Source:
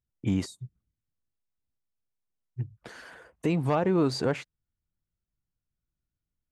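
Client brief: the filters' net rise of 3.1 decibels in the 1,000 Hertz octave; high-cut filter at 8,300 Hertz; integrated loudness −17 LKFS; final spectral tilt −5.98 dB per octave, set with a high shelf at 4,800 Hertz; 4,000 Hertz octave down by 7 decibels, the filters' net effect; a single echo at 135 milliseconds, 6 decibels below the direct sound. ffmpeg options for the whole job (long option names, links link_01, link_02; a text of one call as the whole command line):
ffmpeg -i in.wav -af "lowpass=8300,equalizer=frequency=1000:width_type=o:gain=4.5,equalizer=frequency=4000:width_type=o:gain=-6.5,highshelf=frequency=4800:gain=-4,aecho=1:1:135:0.501,volume=10.5dB" out.wav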